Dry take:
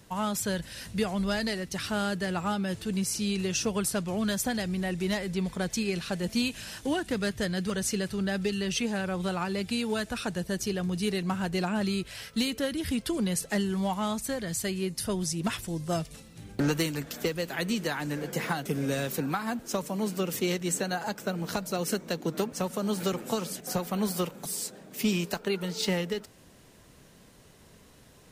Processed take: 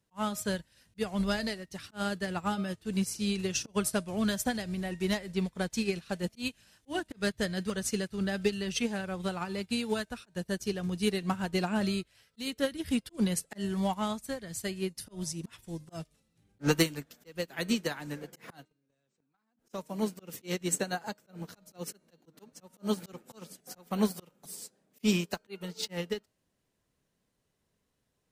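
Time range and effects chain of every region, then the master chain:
18.65–19.57 s: gate -24 dBFS, range -37 dB + brick-wall FIR low-pass 8.7 kHz + level flattener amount 70%
whole clip: de-hum 310.8 Hz, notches 36; slow attack 114 ms; upward expansion 2.5:1, over -43 dBFS; trim +4.5 dB

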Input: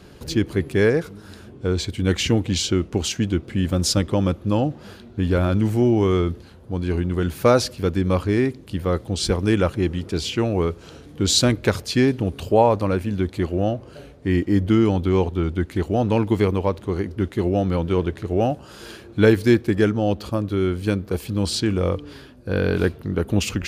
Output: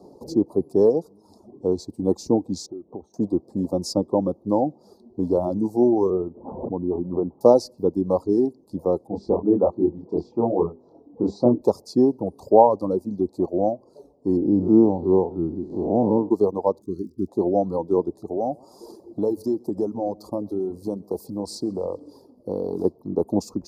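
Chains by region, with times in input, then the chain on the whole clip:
2.66–3.14 s: compression 4:1, threshold -30 dBFS + boxcar filter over 18 samples
6.10–7.41 s: steep low-pass 1.4 kHz 96 dB/octave + swell ahead of each attack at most 25 dB/s
9.07–11.62 s: low-pass 1.7 kHz + hum notches 50/100/150/200/250/300/350/400 Hz + doubling 25 ms -3 dB
14.37–16.31 s: spectral blur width 135 ms + low-pass 5.1 kHz + bass shelf 480 Hz +6.5 dB
16.81–17.27 s: crackle 57 per s -34 dBFS + Butterworth band-stop 720 Hz, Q 0.57
18.17–22.85 s: compression 3:1, threshold -22 dBFS + treble shelf 8.9 kHz +8.5 dB + feedback delay 131 ms, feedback 58%, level -16.5 dB
whole clip: reverb removal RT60 1 s; elliptic band-stop 910–4900 Hz, stop band 40 dB; three-band isolator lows -21 dB, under 210 Hz, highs -15 dB, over 2.9 kHz; trim +4 dB

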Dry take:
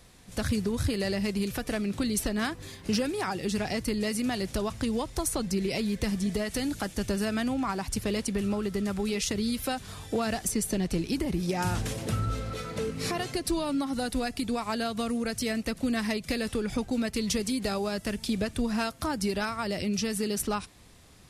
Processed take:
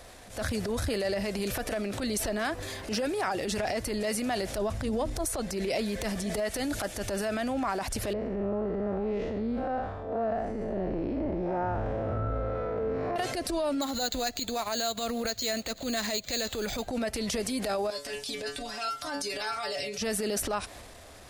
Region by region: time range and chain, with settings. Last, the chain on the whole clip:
4.58–5.25 s: bass shelf 330 Hz +10.5 dB + hum notches 60/120/180/240/300/360 Hz
8.13–13.16 s: spectral blur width 163 ms + low-pass 1.1 kHz
13.81–16.88 s: resonant low-pass 4.2 kHz, resonance Q 7.6 + careless resampling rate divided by 4×, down filtered, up hold + upward expansion, over -41 dBFS
17.90–19.98 s: peaking EQ 4.7 kHz +10 dB 2.3 oct + inharmonic resonator 140 Hz, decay 0.28 s, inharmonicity 0.002
whole clip: fifteen-band graphic EQ 160 Hz -11 dB, 630 Hz +11 dB, 1.6 kHz +4 dB; compression, threshold -31 dBFS; transient shaper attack -10 dB, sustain +5 dB; trim +5 dB

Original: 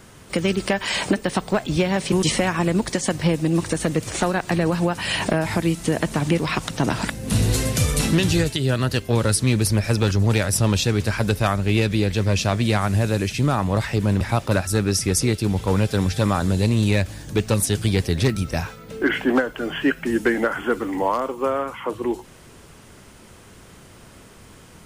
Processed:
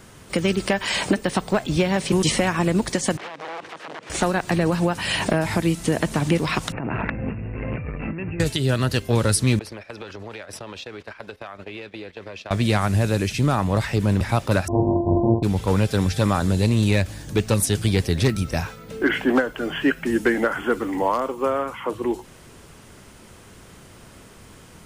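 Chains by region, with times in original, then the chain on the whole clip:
3.17–4.10 s: compression 16:1, threshold -24 dBFS + integer overflow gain 25.5 dB + band-pass 370–2500 Hz
6.72–8.40 s: compressor with a negative ratio -26 dBFS + brick-wall FIR low-pass 2.8 kHz + transformer saturation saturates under 610 Hz
9.59–12.51 s: gate -23 dBFS, range -17 dB + three-band isolator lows -18 dB, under 330 Hz, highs -18 dB, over 4 kHz + compression 16:1, threshold -31 dBFS
14.68–15.43 s: sorted samples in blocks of 128 samples + steep low-pass 1 kHz 96 dB/octave + doubling 44 ms -3 dB
whole clip: none

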